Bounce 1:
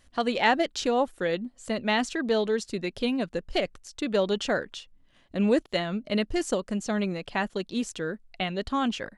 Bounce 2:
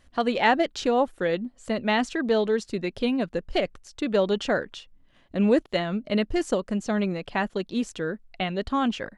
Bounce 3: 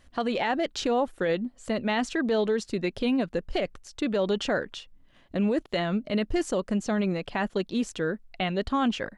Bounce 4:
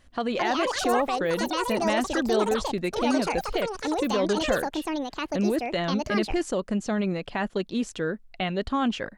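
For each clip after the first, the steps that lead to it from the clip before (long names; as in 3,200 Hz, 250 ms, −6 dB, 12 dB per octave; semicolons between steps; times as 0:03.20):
high-shelf EQ 3,900 Hz −7.5 dB; level +2.5 dB
brickwall limiter −18.5 dBFS, peak gain reduction 10.5 dB; level +1 dB
delay with pitch and tempo change per echo 275 ms, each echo +7 semitones, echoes 2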